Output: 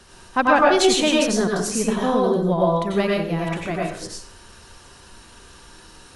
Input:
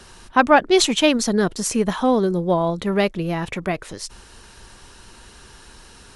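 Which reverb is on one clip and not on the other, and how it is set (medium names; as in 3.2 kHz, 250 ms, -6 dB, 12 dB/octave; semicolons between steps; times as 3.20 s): plate-style reverb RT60 0.53 s, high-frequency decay 0.75×, pre-delay 80 ms, DRR -3 dB; trim -5 dB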